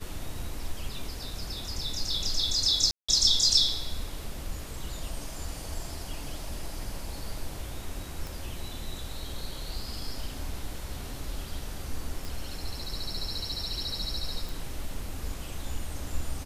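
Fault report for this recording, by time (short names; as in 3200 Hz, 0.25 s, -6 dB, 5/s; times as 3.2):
2.91–3.08 gap 0.175 s
8.27 pop
12.25 pop
14.49 pop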